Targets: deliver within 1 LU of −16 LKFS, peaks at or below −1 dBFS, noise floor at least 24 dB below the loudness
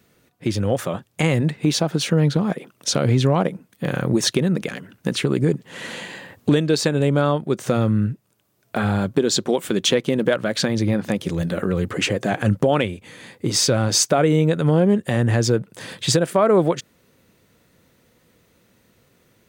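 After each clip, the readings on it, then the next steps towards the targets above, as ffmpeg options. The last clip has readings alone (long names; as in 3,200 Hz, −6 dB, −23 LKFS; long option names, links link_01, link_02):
integrated loudness −20.5 LKFS; sample peak −4.5 dBFS; target loudness −16.0 LKFS
→ -af "volume=4.5dB,alimiter=limit=-1dB:level=0:latency=1"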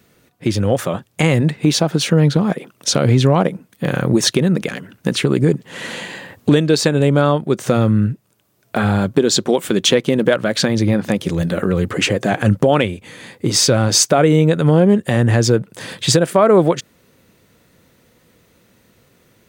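integrated loudness −16.0 LKFS; sample peak −1.0 dBFS; background noise floor −58 dBFS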